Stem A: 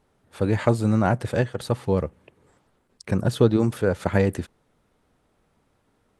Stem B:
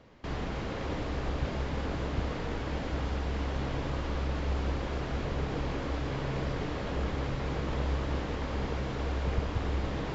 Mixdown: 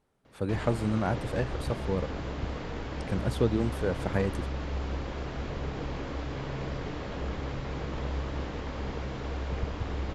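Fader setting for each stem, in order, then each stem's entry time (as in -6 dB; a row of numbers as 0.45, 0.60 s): -8.0, -2.0 dB; 0.00, 0.25 s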